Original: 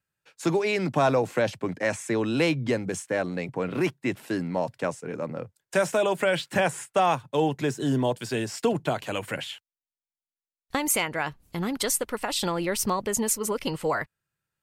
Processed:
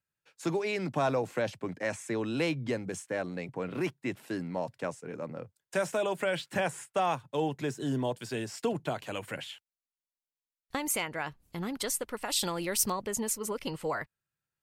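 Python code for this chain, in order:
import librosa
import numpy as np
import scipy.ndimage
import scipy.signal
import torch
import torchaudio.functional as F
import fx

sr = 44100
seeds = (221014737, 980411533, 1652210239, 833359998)

y = fx.high_shelf(x, sr, hz=4000.0, db=9.5, at=(12.25, 12.92))
y = y * 10.0 ** (-6.5 / 20.0)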